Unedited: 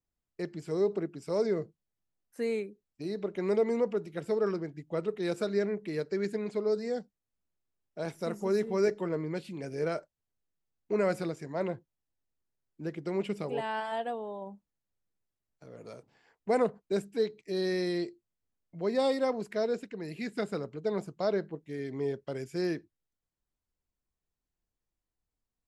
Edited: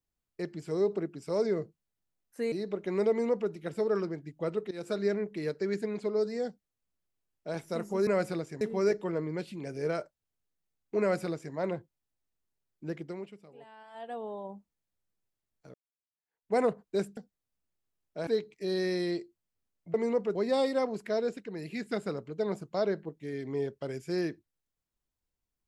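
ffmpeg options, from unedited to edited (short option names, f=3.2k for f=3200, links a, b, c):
-filter_complex "[0:a]asplit=12[a][b][c][d][e][f][g][h][i][j][k][l];[a]atrim=end=2.522[m];[b]atrim=start=3.028:end=5.22,asetpts=PTS-STARTPTS,afade=t=out:st=2.188:d=0.004:c=hsin:silence=0.125893[n];[c]atrim=start=5.22:end=8.582,asetpts=PTS-STARTPTS,afade=t=in:d=0.25:silence=0.125893[o];[d]atrim=start=10.968:end=11.512[p];[e]atrim=start=8.578:end=13.4,asetpts=PTS-STARTPTS,afade=t=out:st=4.372:d=0.45:c=qua:silence=0.112202[q];[f]atrim=start=13.4:end=13.76,asetpts=PTS-STARTPTS,volume=-19dB[r];[g]atrim=start=13.76:end=15.71,asetpts=PTS-STARTPTS,afade=t=in:d=0.45:c=qua:silence=0.112202,afade=t=out:st=1.946:d=0.004:c=hsin[s];[h]atrim=start=15.71:end=17.142,asetpts=PTS-STARTPTS,afade=t=in:d=0.8:c=exp[t];[i]atrim=start=6.978:end=8.082[u];[j]atrim=start=17.138:end=18.812[v];[k]atrim=start=3.608:end=4.022[w];[l]atrim=start=18.808[x];[n][o]concat=n=2:v=0:a=1[y];[m][y]acrossfade=d=0.004:c1=hsin:c2=hsin[z];[z][p]acrossfade=d=0.004:c1=hsin:c2=hsin[aa];[q][r][s][t]concat=n=4:v=0:a=1[ab];[aa][ab]acrossfade=d=0.004:c1=hsin:c2=hsin[ac];[ac][u]acrossfade=d=0.004:c1=hsin:c2=hsin[ad];[ad][v]acrossfade=d=0.004:c1=hsin:c2=hsin[ae];[ae][w]acrossfade=d=0.004:c1=hsin:c2=hsin[af];[af][x]acrossfade=d=0.004:c1=hsin:c2=hsin"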